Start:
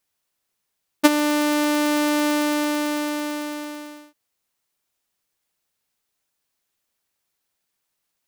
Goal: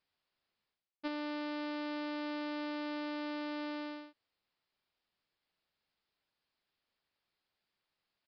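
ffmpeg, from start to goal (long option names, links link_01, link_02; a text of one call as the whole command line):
ffmpeg -i in.wav -af "areverse,acompressor=threshold=-33dB:ratio=12,areverse,aresample=11025,aresample=44100,volume=-4dB" out.wav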